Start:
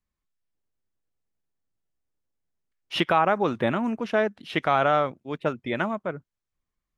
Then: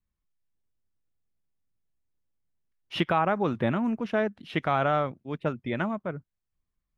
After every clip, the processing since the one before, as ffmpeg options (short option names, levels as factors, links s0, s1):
-af "bass=f=250:g=7,treble=f=4000:g=-4,volume=0.631"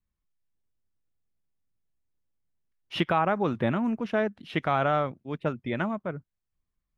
-af anull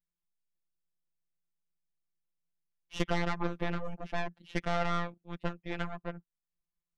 -af "aeval=exprs='0.251*(cos(1*acos(clip(val(0)/0.251,-1,1)))-cos(1*PI/2))+0.0891*(cos(4*acos(clip(val(0)/0.251,-1,1)))-cos(4*PI/2))+0.0141*(cos(8*acos(clip(val(0)/0.251,-1,1)))-cos(8*PI/2))':c=same,afftfilt=real='hypot(re,im)*cos(PI*b)':imag='0':win_size=1024:overlap=0.75,volume=0.473"